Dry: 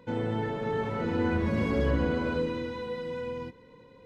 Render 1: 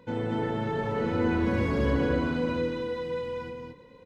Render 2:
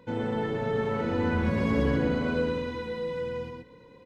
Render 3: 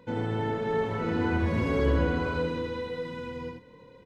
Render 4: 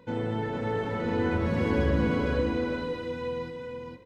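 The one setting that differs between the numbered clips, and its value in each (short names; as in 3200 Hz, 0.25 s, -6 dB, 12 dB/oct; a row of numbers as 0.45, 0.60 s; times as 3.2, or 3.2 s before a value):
echo, time: 224, 123, 84, 459 ms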